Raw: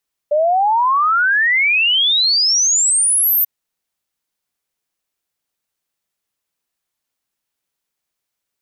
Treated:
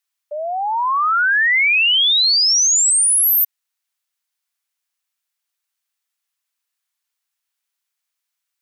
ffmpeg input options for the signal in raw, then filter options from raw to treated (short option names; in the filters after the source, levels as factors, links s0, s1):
-f lavfi -i "aevalsrc='0.266*clip(min(t,3.14-t)/0.01,0,1)*sin(2*PI*580*3.14/log(14000/580)*(exp(log(14000/580)*t/3.14)-1))':d=3.14:s=44100"
-af "highpass=1100"